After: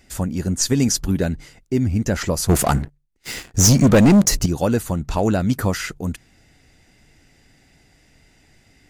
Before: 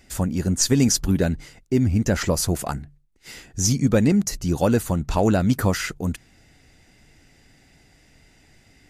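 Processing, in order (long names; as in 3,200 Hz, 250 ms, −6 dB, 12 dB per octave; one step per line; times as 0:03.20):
0:02.49–0:04.46: leveller curve on the samples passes 3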